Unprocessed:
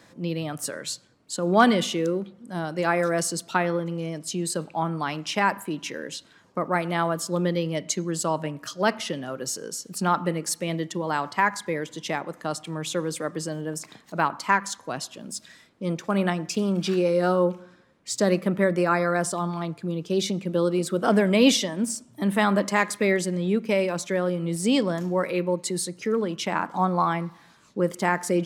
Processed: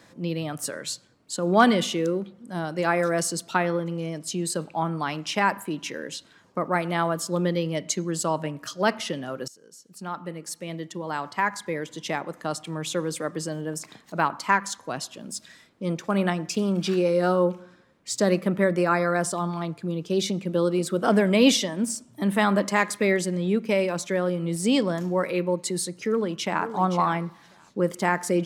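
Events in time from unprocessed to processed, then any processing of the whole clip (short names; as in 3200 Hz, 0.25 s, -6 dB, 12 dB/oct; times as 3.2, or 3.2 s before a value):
9.48–12.21 fade in, from -22 dB
26.09–26.66 echo throw 0.52 s, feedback 10%, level -10.5 dB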